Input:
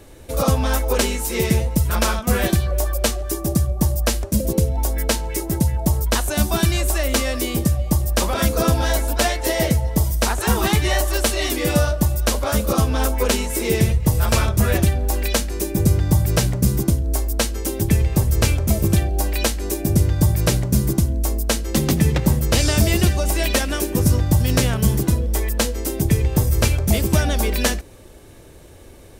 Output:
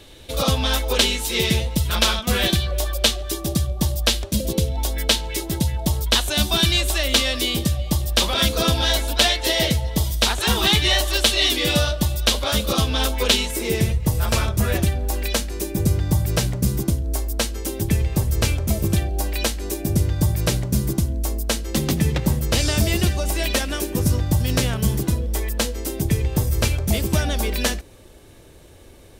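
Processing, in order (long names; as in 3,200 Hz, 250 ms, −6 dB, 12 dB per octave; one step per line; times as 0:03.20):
parametric band 3,500 Hz +15 dB 0.99 octaves, from 0:13.51 +3.5 dB
level −3 dB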